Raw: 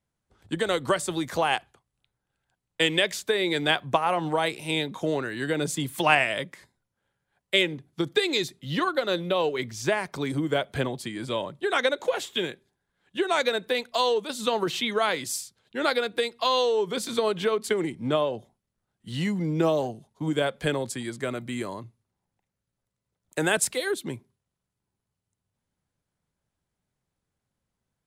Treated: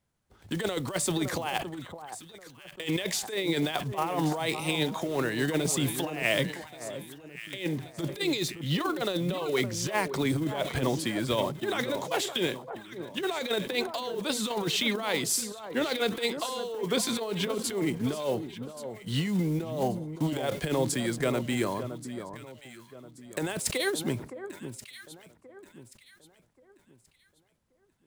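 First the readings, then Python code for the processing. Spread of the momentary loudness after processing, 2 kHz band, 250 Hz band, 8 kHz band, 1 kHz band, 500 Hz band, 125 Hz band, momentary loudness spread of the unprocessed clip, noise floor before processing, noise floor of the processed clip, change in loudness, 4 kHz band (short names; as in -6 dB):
14 LU, -5.0 dB, 0.0 dB, +1.5 dB, -6.0 dB, -4.5 dB, +1.5 dB, 9 LU, -84 dBFS, -66 dBFS, -3.5 dB, -3.5 dB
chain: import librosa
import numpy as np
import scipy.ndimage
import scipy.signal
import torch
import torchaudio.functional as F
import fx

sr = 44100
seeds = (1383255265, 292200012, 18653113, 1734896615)

y = fx.block_float(x, sr, bits=5)
y = fx.dynamic_eq(y, sr, hz=1500.0, q=3.2, threshold_db=-42.0, ratio=4.0, max_db=-5)
y = fx.over_compress(y, sr, threshold_db=-28.0, ratio=-0.5)
y = fx.echo_alternate(y, sr, ms=565, hz=1400.0, feedback_pct=56, wet_db=-9.5)
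y = fx.sustainer(y, sr, db_per_s=120.0)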